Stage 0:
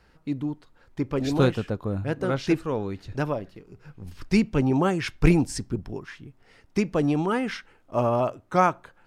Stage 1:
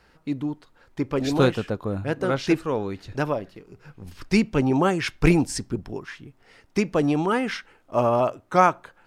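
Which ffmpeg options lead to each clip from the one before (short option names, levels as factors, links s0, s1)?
-af "lowshelf=f=210:g=-6,volume=1.5"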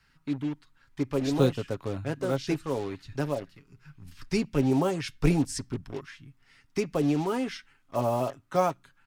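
-filter_complex "[0:a]aecho=1:1:7.3:0.45,acrossover=split=280|1000|2800[s0][s1][s2][s3];[s1]acrusher=bits=5:mix=0:aa=0.5[s4];[s2]acompressor=threshold=0.0112:ratio=6[s5];[s0][s4][s5][s3]amix=inputs=4:normalize=0,volume=0.531"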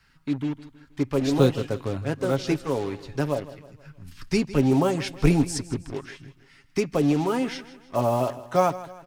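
-af "aecho=1:1:159|318|477|636:0.15|0.0673|0.0303|0.0136,volume=1.58"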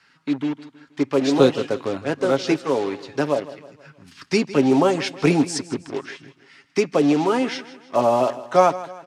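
-af "highpass=250,lowpass=7200,volume=2"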